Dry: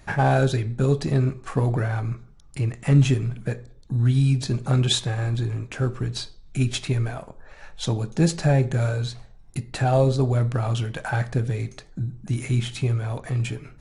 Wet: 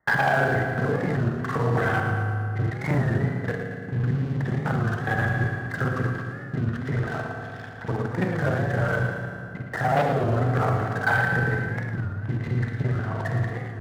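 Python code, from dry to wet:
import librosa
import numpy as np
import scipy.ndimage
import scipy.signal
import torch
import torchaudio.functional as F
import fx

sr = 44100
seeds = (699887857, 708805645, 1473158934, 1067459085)

y = fx.local_reverse(x, sr, ms=37.0)
y = fx.tilt_shelf(y, sr, db=-4.0, hz=1100.0)
y = fx.level_steps(y, sr, step_db=10)
y = fx.brickwall_lowpass(y, sr, high_hz=2100.0)
y = fx.leveller(y, sr, passes=3)
y = scipy.signal.sosfilt(scipy.signal.butter(2, 81.0, 'highpass', fs=sr, output='sos'), y)
y = fx.low_shelf(y, sr, hz=460.0, db=-6.5)
y = fx.echo_feedback(y, sr, ms=114, feedback_pct=57, wet_db=-9.0)
y = fx.rev_fdn(y, sr, rt60_s=2.8, lf_ratio=1.25, hf_ratio=0.65, size_ms=13.0, drr_db=3.0)
y = fx.record_warp(y, sr, rpm=33.33, depth_cents=160.0)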